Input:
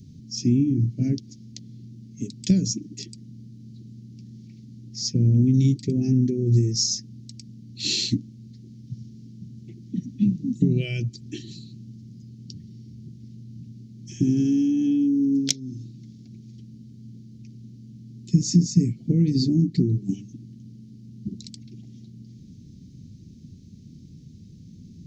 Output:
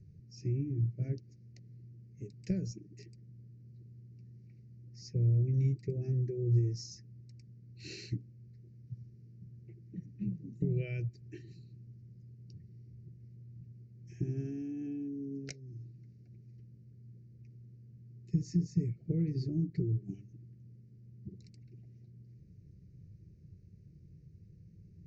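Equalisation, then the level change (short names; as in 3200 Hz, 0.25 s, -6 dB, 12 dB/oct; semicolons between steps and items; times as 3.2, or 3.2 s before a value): LPF 2700 Hz 12 dB/oct; fixed phaser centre 920 Hz, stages 6; -5.5 dB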